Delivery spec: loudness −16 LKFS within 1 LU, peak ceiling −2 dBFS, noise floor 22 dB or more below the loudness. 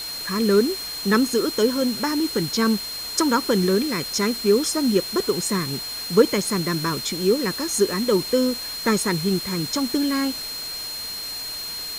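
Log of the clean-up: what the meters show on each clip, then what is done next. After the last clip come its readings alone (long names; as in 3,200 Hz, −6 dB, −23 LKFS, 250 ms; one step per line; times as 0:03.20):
interfering tone 4,200 Hz; level of the tone −30 dBFS; background noise floor −32 dBFS; target noise floor −44 dBFS; integrated loudness −22.0 LKFS; sample peak −3.0 dBFS; target loudness −16.0 LKFS
→ notch filter 4,200 Hz, Q 30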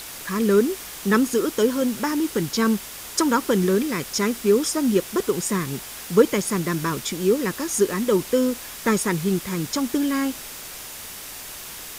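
interfering tone none found; background noise floor −37 dBFS; target noise floor −45 dBFS
→ noise reduction from a noise print 8 dB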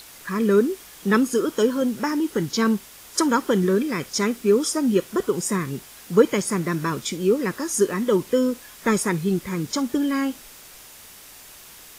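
background noise floor −45 dBFS; integrated loudness −22.5 LKFS; sample peak −3.5 dBFS; target loudness −16.0 LKFS
→ level +6.5 dB
brickwall limiter −2 dBFS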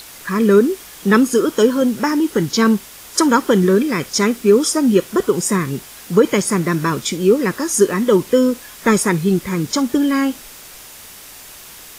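integrated loudness −16.5 LKFS; sample peak −2.0 dBFS; background noise floor −39 dBFS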